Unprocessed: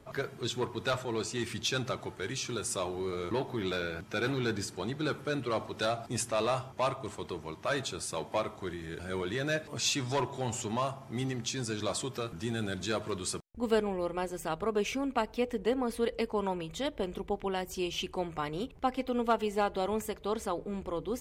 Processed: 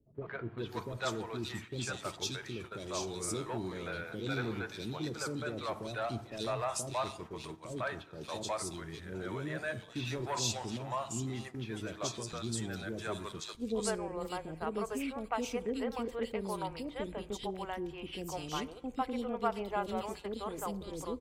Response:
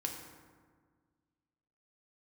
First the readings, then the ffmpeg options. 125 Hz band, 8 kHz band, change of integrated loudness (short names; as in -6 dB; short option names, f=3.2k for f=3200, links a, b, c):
-3.0 dB, -3.0 dB, -4.5 dB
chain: -filter_complex "[0:a]acrossover=split=470|2800[a][b][c];[b]adelay=150[d];[c]adelay=580[e];[a][d][e]amix=inputs=3:normalize=0,agate=range=-11dB:threshold=-42dB:ratio=16:detection=peak,asplit=2[f][g];[1:a]atrim=start_sample=2205,afade=t=out:st=0.38:d=0.01,atrim=end_sample=17199[h];[g][h]afir=irnorm=-1:irlink=0,volume=-16dB[i];[f][i]amix=inputs=2:normalize=0,volume=-4dB"